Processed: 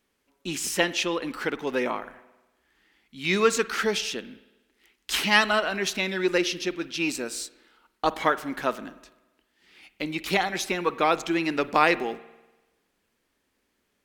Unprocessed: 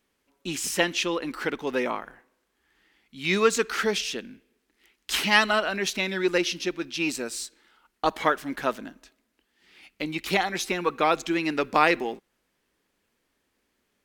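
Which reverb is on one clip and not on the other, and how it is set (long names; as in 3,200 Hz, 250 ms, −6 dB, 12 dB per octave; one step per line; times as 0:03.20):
spring reverb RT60 1.1 s, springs 48 ms, chirp 60 ms, DRR 16 dB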